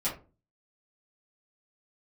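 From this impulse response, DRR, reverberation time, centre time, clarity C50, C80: −10.5 dB, 0.35 s, 25 ms, 8.0 dB, 15.0 dB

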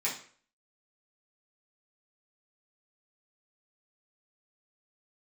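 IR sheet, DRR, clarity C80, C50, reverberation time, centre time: −8.0 dB, 12.0 dB, 7.5 dB, 0.50 s, 27 ms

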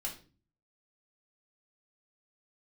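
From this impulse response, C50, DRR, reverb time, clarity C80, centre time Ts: 10.0 dB, −3.0 dB, 0.40 s, 15.5 dB, 18 ms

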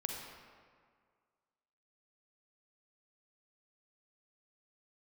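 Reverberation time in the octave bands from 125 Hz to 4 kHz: 1.8, 1.9, 1.9, 1.9, 1.6, 1.1 seconds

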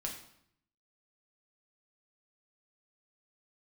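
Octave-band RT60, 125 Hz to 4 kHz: 1.0, 0.85, 0.70, 0.70, 0.65, 0.60 seconds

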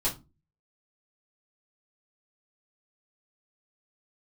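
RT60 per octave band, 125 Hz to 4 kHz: 0.55, 0.40, 0.25, 0.25, 0.20, 0.20 seconds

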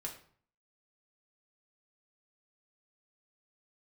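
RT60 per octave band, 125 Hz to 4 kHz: 0.70, 0.60, 0.50, 0.50, 0.45, 0.40 seconds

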